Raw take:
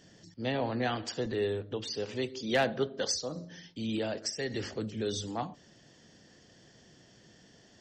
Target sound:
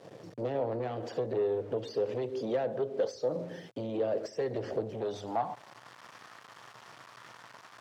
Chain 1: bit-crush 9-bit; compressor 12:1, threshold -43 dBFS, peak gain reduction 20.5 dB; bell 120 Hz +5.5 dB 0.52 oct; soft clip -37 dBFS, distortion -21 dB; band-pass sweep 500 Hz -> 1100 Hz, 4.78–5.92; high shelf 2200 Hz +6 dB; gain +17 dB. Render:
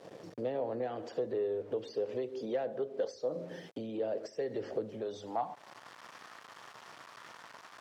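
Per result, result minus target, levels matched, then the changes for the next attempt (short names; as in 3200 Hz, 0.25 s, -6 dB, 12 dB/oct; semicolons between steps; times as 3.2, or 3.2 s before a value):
compressor: peak gain reduction +6 dB; 125 Hz band -5.5 dB
change: compressor 12:1, threshold -36.5 dBFS, peak gain reduction 14.5 dB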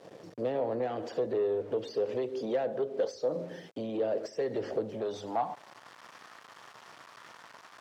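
125 Hz band -5.5 dB
change: bell 120 Hz +14 dB 0.52 oct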